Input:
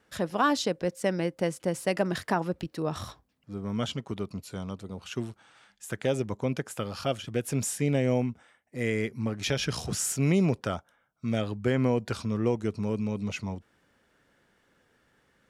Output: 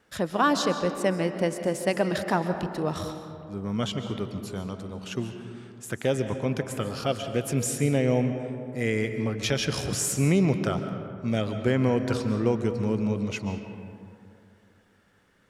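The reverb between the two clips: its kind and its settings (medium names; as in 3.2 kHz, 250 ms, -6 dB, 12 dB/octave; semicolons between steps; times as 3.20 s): algorithmic reverb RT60 2.5 s, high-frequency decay 0.4×, pre-delay 100 ms, DRR 7.5 dB; trim +2 dB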